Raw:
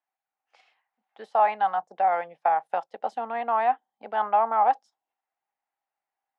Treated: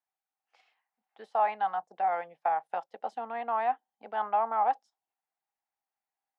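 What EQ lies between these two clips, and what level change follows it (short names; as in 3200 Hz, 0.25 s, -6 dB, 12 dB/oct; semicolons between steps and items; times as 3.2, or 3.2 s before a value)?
notch 570 Hz, Q 15; -5.5 dB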